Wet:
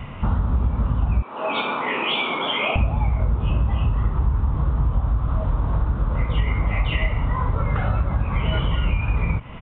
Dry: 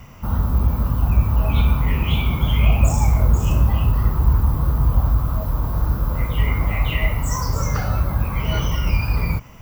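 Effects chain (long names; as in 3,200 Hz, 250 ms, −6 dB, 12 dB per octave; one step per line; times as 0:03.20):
0:01.22–0:02.76: high-pass filter 330 Hz 24 dB per octave
downward compressor 5 to 1, threshold −26 dBFS, peak gain reduction 15 dB
downsampling to 8,000 Hz
level +8 dB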